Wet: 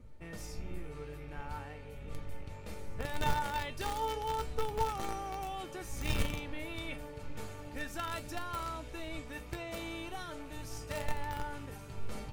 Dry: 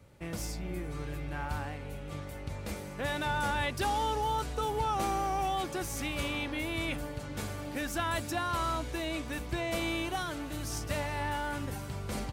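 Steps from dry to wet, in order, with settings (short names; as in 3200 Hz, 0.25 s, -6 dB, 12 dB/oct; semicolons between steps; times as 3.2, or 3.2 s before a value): rattling part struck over -40 dBFS, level -42 dBFS; wind noise 98 Hz -40 dBFS; high shelf 3800 Hz -4 dB; reverse; upward compressor, threshold -41 dBFS; reverse; resonator 610 Hz, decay 0.53 s, mix 80%; in parallel at -6 dB: requantised 6-bit, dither none; on the sum: resonator 450 Hz, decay 0.19 s, harmonics all, mix 80%; gain +17.5 dB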